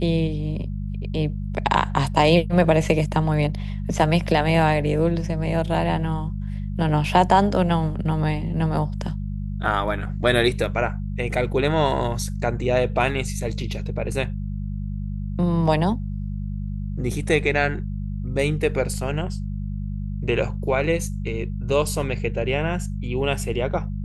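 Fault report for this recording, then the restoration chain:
hum 50 Hz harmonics 4 -28 dBFS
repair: de-hum 50 Hz, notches 4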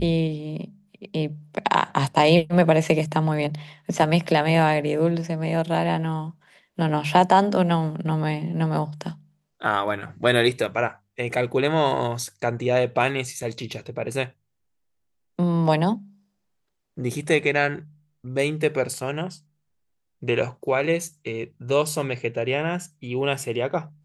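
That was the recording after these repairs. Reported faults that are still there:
none

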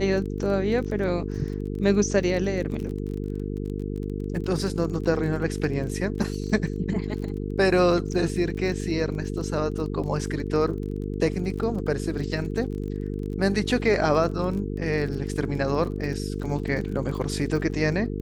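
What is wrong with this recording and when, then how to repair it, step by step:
buzz 50 Hz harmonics 9 -30 dBFS
crackle 30/s -33 dBFS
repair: de-click; de-hum 50 Hz, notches 9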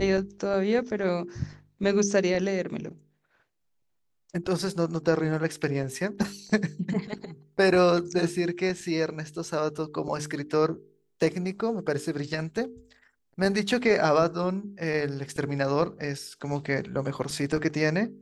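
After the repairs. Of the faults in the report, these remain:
none

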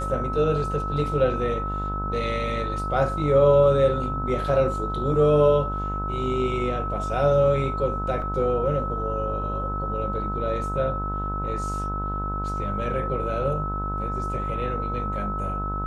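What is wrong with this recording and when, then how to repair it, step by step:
buzz 50 Hz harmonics 30 -30 dBFS
tone 1300 Hz -29 dBFS
8.22 gap 3.7 ms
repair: de-hum 50 Hz, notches 30; notch 1300 Hz, Q 30; interpolate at 8.22, 3.7 ms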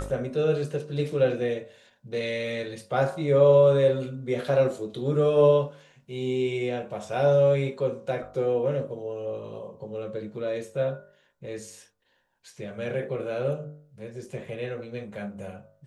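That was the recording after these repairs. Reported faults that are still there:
none

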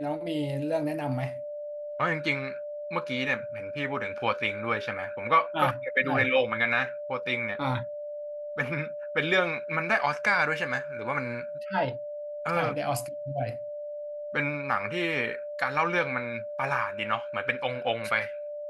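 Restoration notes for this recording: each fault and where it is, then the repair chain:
tone 590 Hz -34 dBFS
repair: notch 590 Hz, Q 30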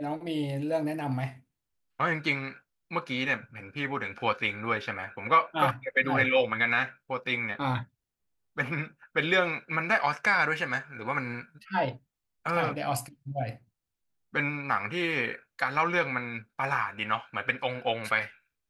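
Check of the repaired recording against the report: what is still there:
none

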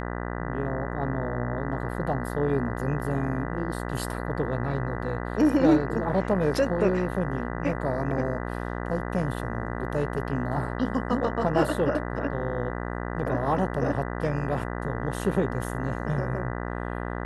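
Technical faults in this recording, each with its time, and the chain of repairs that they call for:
buzz 60 Hz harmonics 33 -32 dBFS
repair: de-hum 60 Hz, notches 33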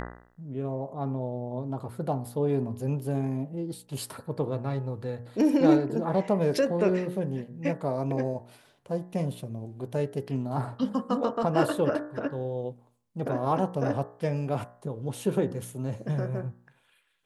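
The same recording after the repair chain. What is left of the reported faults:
none

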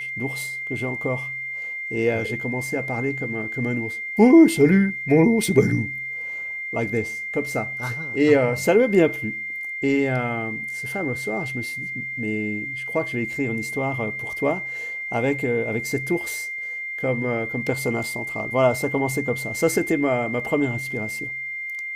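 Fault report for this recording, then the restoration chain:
tone 2100 Hz -28 dBFS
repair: notch 2100 Hz, Q 30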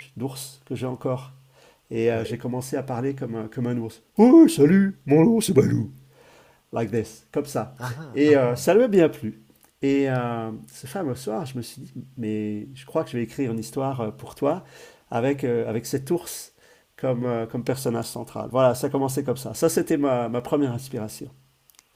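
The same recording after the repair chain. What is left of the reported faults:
none

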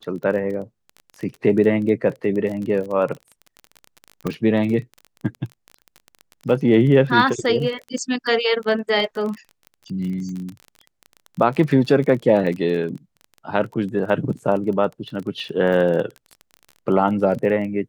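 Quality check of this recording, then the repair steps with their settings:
crackle 24/s -28 dBFS
4.27 pop -12 dBFS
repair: de-click

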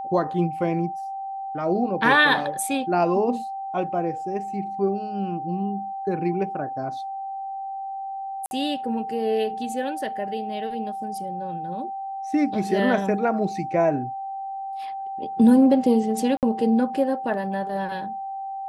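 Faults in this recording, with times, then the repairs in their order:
tone 780 Hz -29 dBFS
8.46–8.51 gap 51 ms
16.37–16.43 gap 58 ms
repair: notch 780 Hz, Q 30; interpolate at 8.46, 51 ms; interpolate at 16.37, 58 ms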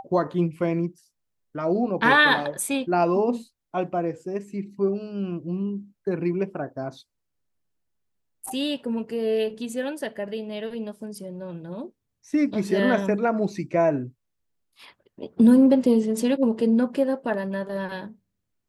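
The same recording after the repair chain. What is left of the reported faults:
none

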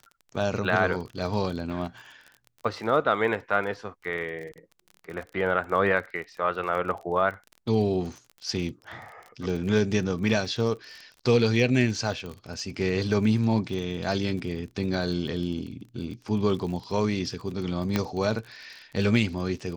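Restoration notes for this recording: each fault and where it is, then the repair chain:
crackle 33/s -35 dBFS
12.26 pop
17.96 pop -10 dBFS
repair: de-click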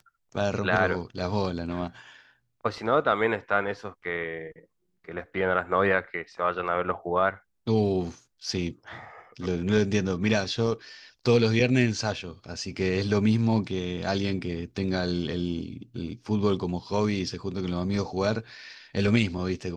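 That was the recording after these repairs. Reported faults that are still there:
none

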